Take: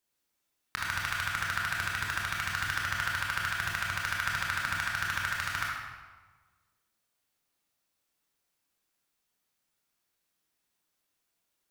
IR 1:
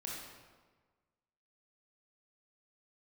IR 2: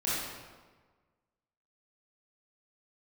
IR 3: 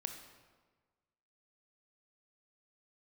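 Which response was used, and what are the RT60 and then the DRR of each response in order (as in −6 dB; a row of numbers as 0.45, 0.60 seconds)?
1; 1.4, 1.4, 1.4 seconds; −4.0, −9.5, 5.5 decibels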